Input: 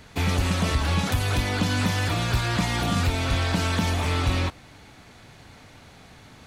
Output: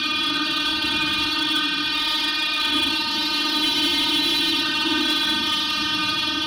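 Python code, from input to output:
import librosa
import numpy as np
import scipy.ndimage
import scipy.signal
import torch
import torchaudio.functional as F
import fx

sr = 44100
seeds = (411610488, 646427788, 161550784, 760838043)

y = fx.fixed_phaser(x, sr, hz=2100.0, stages=6)
y = fx.rev_freeverb(y, sr, rt60_s=1.5, hf_ratio=0.65, predelay_ms=0, drr_db=-1.0)
y = fx.robotise(y, sr, hz=307.0)
y = fx.weighting(y, sr, curve='D')
y = fx.paulstretch(y, sr, seeds[0], factor=8.8, window_s=0.05, from_s=3.23)
y = scipy.signal.sosfilt(scipy.signal.butter(2, 54.0, 'highpass', fs=sr, output='sos'), y)
y = fx.high_shelf(y, sr, hz=11000.0, db=-8.5)
y = fx.spec_freeze(y, sr, seeds[1], at_s=3.65, hold_s=0.99)
y = fx.slew_limit(y, sr, full_power_hz=340.0)
y = y * 10.0 ** (1.5 / 20.0)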